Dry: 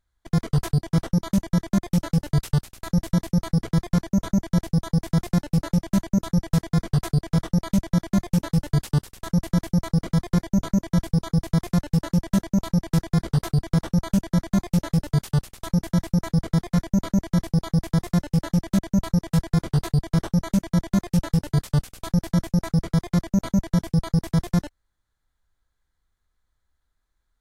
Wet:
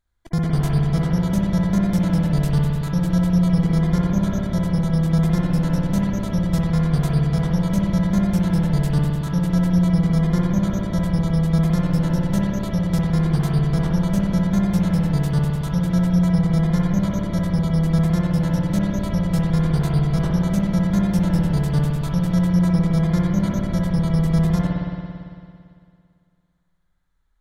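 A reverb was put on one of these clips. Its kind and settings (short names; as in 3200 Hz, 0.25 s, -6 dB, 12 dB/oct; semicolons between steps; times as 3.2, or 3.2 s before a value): spring tank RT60 2.3 s, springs 56 ms, chirp 75 ms, DRR -3.5 dB; gain -1.5 dB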